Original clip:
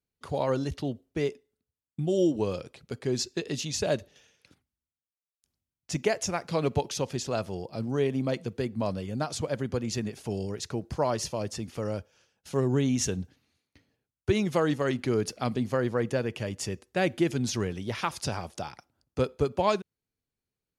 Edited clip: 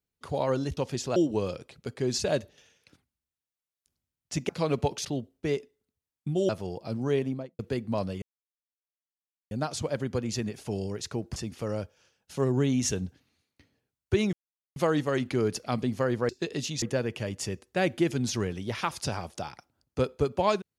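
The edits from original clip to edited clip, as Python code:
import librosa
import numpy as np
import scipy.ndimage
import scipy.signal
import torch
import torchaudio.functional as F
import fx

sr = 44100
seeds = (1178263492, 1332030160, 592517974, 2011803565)

y = fx.studio_fade_out(x, sr, start_s=8.05, length_s=0.42)
y = fx.edit(y, sr, fx.swap(start_s=0.77, length_s=1.44, other_s=6.98, other_length_s=0.39),
    fx.move(start_s=3.24, length_s=0.53, to_s=16.02),
    fx.cut(start_s=6.07, length_s=0.35),
    fx.insert_silence(at_s=9.1, length_s=1.29),
    fx.cut(start_s=10.95, length_s=0.57),
    fx.insert_silence(at_s=14.49, length_s=0.43), tone=tone)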